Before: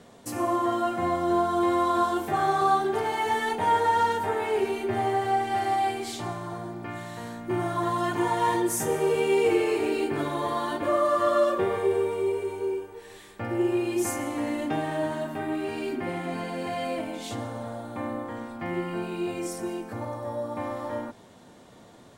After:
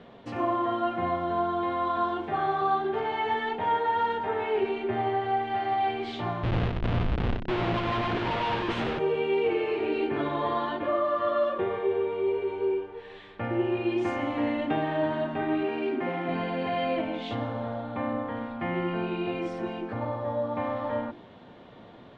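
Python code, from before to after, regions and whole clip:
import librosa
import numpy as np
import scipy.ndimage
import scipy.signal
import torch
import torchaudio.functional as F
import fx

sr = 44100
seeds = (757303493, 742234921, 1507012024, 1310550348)

y = fx.chain(x, sr, fx.schmitt(flips_db=-31.0),
    fx.echo_single(ms=94, db=-6.5), at=(6.43, 8.99))
y = fx.chain(y, sr, fx.median_filter(points=9),
    fx.highpass(hz=190.0, slope=12),
    fx.high_shelf(hz=6000.0, db=-4.5), at=(15.63, 16.29))
y = scipy.signal.sosfilt(scipy.signal.cheby1(3, 1.0, 3300.0, 'lowpass', fs=sr, output='sos'), y)
y = fx.hum_notches(y, sr, base_hz=50, count=7)
y = fx.rider(y, sr, range_db=3, speed_s=0.5)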